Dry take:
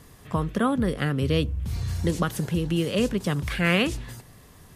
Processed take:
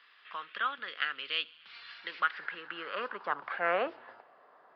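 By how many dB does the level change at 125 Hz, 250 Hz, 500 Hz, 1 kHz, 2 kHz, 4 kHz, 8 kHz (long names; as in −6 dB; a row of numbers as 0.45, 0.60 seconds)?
−39.5 dB, −27.0 dB, −10.0 dB, −1.5 dB, −3.0 dB, −5.0 dB, below −40 dB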